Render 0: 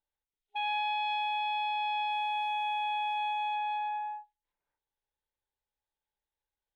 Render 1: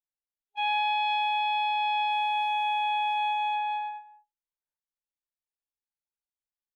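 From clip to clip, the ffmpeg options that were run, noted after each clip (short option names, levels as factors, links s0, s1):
-af "agate=range=0.1:threshold=0.0224:ratio=16:detection=peak,volume=1.78"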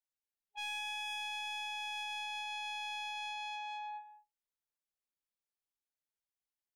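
-filter_complex "[0:a]acrossover=split=1900[s0][s1];[s0]alimiter=level_in=3.55:limit=0.0631:level=0:latency=1,volume=0.282[s2];[s2][s1]amix=inputs=2:normalize=0,asoftclip=type=tanh:threshold=0.0211,volume=0.668"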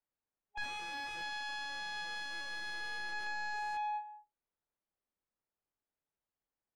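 -af "aeval=exprs='(mod(84.1*val(0)+1,2)-1)/84.1':c=same,adynamicsmooth=sensitivity=5:basefreq=1600,volume=2.51"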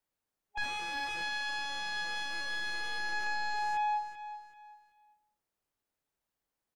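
-af "aecho=1:1:383|766|1149:0.251|0.0754|0.0226,volume=1.78"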